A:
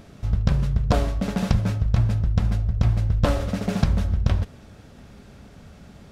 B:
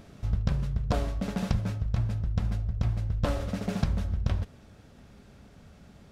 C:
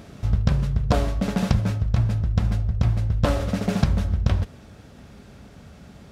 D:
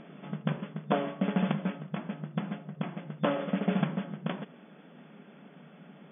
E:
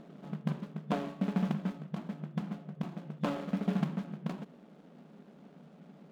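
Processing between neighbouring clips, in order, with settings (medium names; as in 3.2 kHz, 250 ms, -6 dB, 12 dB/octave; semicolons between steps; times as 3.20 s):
gain riding 0.5 s; trim -7 dB
high-pass 41 Hz; trim +7.5 dB
FFT band-pass 140–3500 Hz; trim -4 dB
median filter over 25 samples; dynamic bell 530 Hz, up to -6 dB, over -47 dBFS, Q 2; trim -2 dB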